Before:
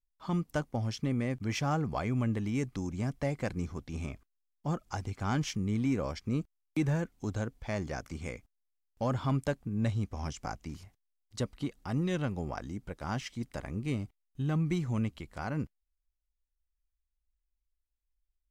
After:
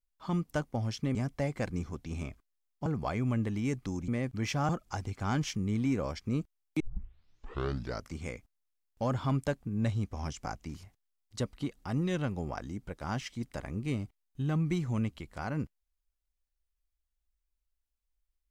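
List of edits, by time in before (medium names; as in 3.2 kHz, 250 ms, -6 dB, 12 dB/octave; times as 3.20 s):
1.15–1.76 s: swap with 2.98–4.69 s
6.80 s: tape start 1.33 s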